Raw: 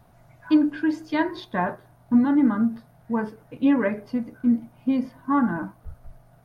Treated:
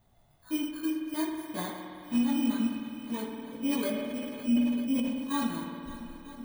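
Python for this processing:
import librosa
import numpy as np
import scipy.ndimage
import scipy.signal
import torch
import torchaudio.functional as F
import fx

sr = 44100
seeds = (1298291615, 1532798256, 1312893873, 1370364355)

y = fx.bit_reversed(x, sr, seeds[0], block=16)
y = fx.chorus_voices(y, sr, voices=6, hz=0.52, base_ms=20, depth_ms=2.6, mix_pct=45)
y = fx.echo_swing(y, sr, ms=946, ratio=1.5, feedback_pct=57, wet_db=-16.0)
y = fx.rev_spring(y, sr, rt60_s=2.6, pass_ms=(54,), chirp_ms=70, drr_db=2.5)
y = fx.sustainer(y, sr, db_per_s=32.0, at=(3.69, 5.44))
y = y * 10.0 ** (-8.0 / 20.0)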